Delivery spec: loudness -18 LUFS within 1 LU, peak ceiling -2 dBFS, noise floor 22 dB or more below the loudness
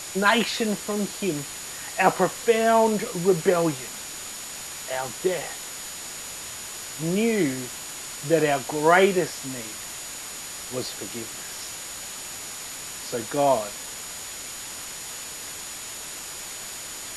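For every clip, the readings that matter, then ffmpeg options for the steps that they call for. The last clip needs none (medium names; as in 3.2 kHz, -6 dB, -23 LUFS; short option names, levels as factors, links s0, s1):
steady tone 6.9 kHz; tone level -40 dBFS; noise floor -37 dBFS; noise floor target -49 dBFS; loudness -26.5 LUFS; peak level -3.5 dBFS; loudness target -18.0 LUFS
-> -af "bandreject=f=6900:w=30"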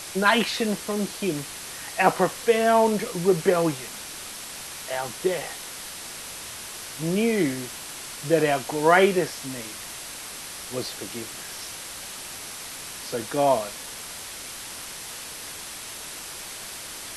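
steady tone not found; noise floor -38 dBFS; noise floor target -49 dBFS
-> -af "afftdn=nr=11:nf=-38"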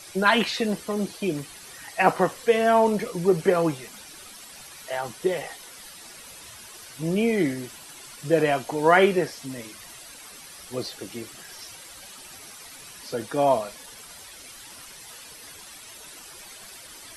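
noise floor -45 dBFS; noise floor target -46 dBFS
-> -af "afftdn=nr=6:nf=-45"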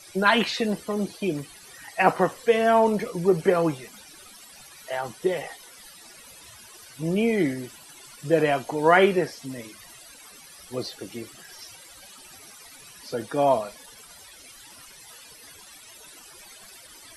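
noise floor -48 dBFS; loudness -24.0 LUFS; peak level -4.0 dBFS; loudness target -18.0 LUFS
-> -af "volume=2,alimiter=limit=0.794:level=0:latency=1"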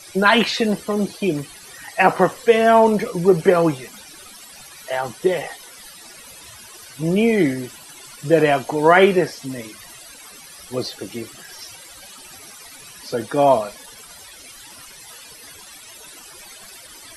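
loudness -18.5 LUFS; peak level -2.0 dBFS; noise floor -42 dBFS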